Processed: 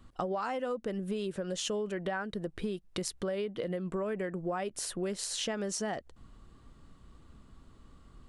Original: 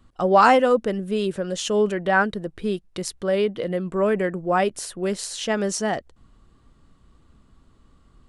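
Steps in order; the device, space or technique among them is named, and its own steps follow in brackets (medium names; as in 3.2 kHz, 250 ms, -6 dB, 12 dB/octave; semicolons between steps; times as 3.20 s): serial compression, leveller first (compression 3:1, threshold -20 dBFS, peak gain reduction 7.5 dB; compression 6:1, threshold -32 dBFS, peak gain reduction 14 dB)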